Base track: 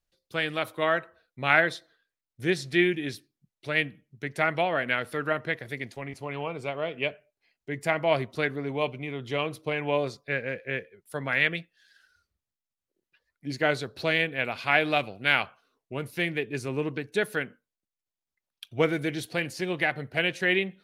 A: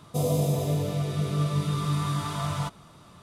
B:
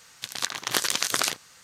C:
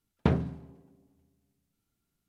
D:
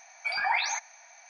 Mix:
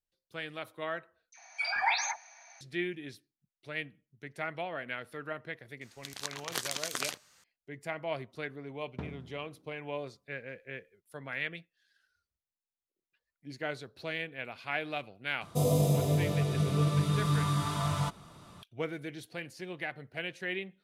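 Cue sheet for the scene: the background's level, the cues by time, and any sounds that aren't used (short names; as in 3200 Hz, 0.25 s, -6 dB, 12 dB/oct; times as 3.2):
base track -11.5 dB
1.32 replace with D -2 dB + dispersion lows, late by 69 ms, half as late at 1400 Hz
5.81 add B -10.5 dB
8.73 add C -17 dB + AGC gain up to 10 dB
15.41 add A -1.5 dB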